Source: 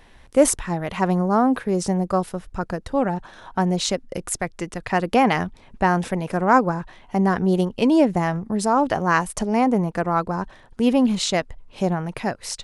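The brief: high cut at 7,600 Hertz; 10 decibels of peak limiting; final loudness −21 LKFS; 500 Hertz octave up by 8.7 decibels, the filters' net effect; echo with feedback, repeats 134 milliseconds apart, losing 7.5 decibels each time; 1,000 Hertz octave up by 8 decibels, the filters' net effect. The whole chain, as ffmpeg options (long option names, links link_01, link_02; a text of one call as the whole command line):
ffmpeg -i in.wav -af "lowpass=7600,equalizer=frequency=500:width_type=o:gain=8.5,equalizer=frequency=1000:width_type=o:gain=7,alimiter=limit=-5.5dB:level=0:latency=1,aecho=1:1:134|268|402|536|670:0.422|0.177|0.0744|0.0312|0.0131,volume=-3.5dB" out.wav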